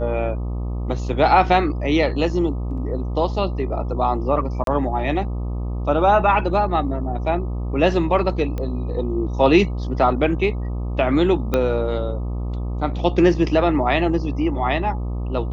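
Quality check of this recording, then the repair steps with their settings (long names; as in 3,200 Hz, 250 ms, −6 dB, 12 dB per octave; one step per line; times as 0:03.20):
mains buzz 60 Hz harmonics 21 −25 dBFS
0:04.64–0:04.67: drop-out 32 ms
0:08.58: click −16 dBFS
0:11.54: click −7 dBFS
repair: click removal
hum removal 60 Hz, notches 21
repair the gap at 0:04.64, 32 ms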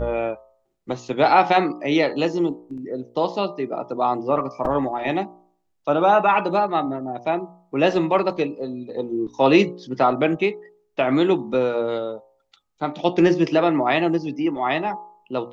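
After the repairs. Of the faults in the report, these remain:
0:11.54: click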